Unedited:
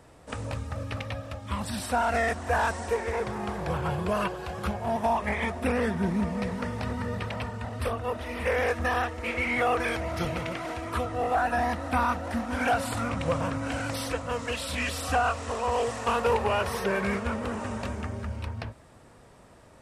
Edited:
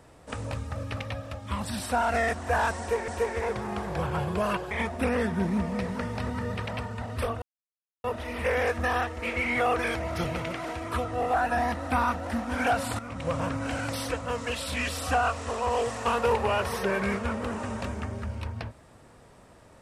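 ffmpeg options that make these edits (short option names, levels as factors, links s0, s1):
-filter_complex "[0:a]asplit=5[s0][s1][s2][s3][s4];[s0]atrim=end=3.082[s5];[s1]atrim=start=2.788:end=4.422[s6];[s2]atrim=start=5.338:end=8.05,asetpts=PTS-STARTPTS,afade=t=out:st=2.708:d=0.004:c=hsin,apad=pad_dur=0.62[s7];[s3]atrim=start=8.05:end=13,asetpts=PTS-STARTPTS,afade=t=in:d=0.004:c=hsin,afade=t=out:st=4.946:d=0.004:c=hsin:silence=0.223872[s8];[s4]atrim=start=13,asetpts=PTS-STARTPTS,afade=t=in:d=0.45:silence=0.223872[s9];[s5][s6]acrossfade=d=0.004:c1=hsin:c2=hsin[s10];[s7][s8][s9]concat=n=3:v=0:a=1[s11];[s10][s11]acrossfade=d=0.004:c1=hsin:c2=hsin"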